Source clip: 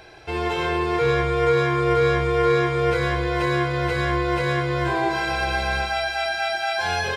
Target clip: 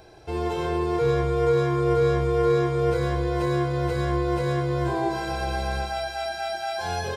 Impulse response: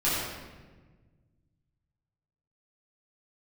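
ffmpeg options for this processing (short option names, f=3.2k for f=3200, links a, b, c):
-af "equalizer=f=2.2k:w=0.67:g=-12"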